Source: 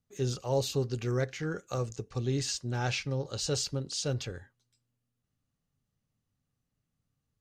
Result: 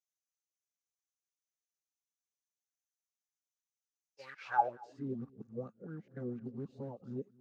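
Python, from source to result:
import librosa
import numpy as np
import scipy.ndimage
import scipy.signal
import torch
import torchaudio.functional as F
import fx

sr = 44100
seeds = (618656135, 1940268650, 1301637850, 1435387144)

p1 = np.flip(x).copy()
p2 = fx.quant_float(p1, sr, bits=2)
p3 = fx.filter_sweep_bandpass(p2, sr, from_hz=6300.0, to_hz=220.0, start_s=3.88, end_s=5.06, q=5.7)
p4 = p3 + fx.echo_single(p3, sr, ms=227, db=-23.5, dry=0)
p5 = fx.spec_freeze(p4, sr, seeds[0], at_s=0.48, hold_s=3.72)
p6 = fx.bell_lfo(p5, sr, hz=4.3, low_hz=490.0, high_hz=1600.0, db=16)
y = p6 * librosa.db_to_amplitude(1.5)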